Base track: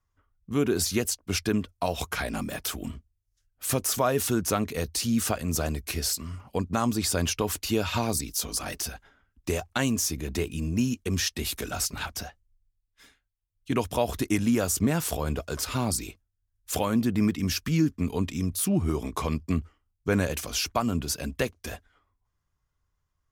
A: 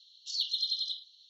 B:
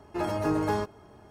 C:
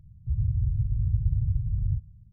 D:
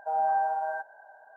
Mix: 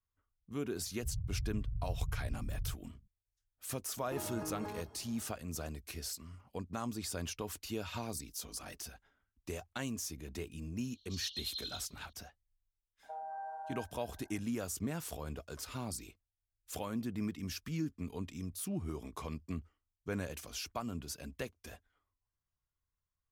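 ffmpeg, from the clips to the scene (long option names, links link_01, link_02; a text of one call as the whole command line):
ffmpeg -i bed.wav -i cue0.wav -i cue1.wav -i cue2.wav -i cue3.wav -filter_complex "[0:a]volume=-13.5dB[link_01];[3:a]equalizer=frequency=100:width_type=o:width=1.3:gain=-7[link_02];[2:a]acompressor=threshold=-33dB:ratio=6:attack=3.2:release=140:knee=1:detection=peak[link_03];[1:a]lowpass=8800[link_04];[4:a]alimiter=level_in=2.5dB:limit=-24dB:level=0:latency=1:release=305,volume=-2.5dB[link_05];[link_02]atrim=end=2.32,asetpts=PTS-STARTPTS,volume=-8.5dB,afade=type=in:duration=0.004:curve=hsin,afade=type=out:start_time=2.316:duration=0.004:curve=hsin,adelay=760[link_06];[link_03]atrim=end=1.3,asetpts=PTS-STARTPTS,volume=-6.5dB,afade=type=in:duration=0.004:curve=hsin,afade=type=out:start_time=1.296:duration=0.004:curve=hsin,adelay=175077S[link_07];[link_04]atrim=end=1.29,asetpts=PTS-STARTPTS,volume=-9.5dB,afade=type=in:duration=0.004:curve=hsin,afade=type=out:start_time=1.286:duration=0.004:curve=hsin,adelay=10840[link_08];[link_05]atrim=end=1.36,asetpts=PTS-STARTPTS,volume=-11dB,afade=type=in:duration=0.004:curve=hsin,afade=type=out:start_time=1.356:duration=0.004:curve=hsin,adelay=13030[link_09];[link_01][link_06][link_07][link_08][link_09]amix=inputs=5:normalize=0" out.wav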